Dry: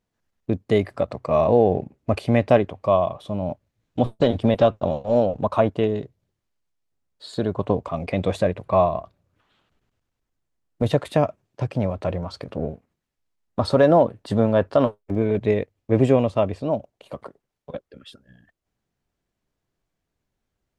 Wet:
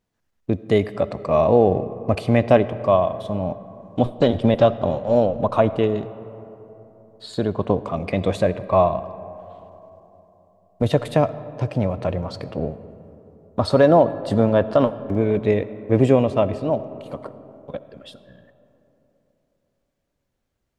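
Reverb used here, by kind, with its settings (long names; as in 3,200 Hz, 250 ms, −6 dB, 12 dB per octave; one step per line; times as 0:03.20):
comb and all-pass reverb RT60 3.5 s, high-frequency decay 0.35×, pre-delay 25 ms, DRR 14.5 dB
level +1.5 dB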